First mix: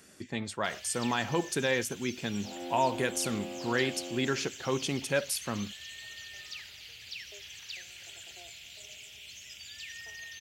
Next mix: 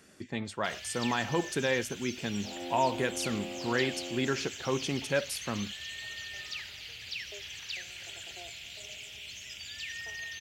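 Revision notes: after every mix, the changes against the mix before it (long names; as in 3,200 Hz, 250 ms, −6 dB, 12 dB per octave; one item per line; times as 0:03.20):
first sound +5.5 dB
master: add high-shelf EQ 5,500 Hz −7 dB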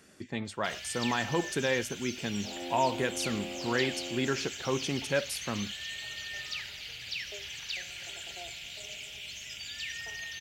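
reverb: on, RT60 0.40 s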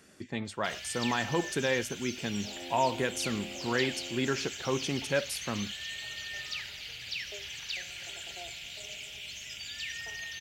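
second sound −5.0 dB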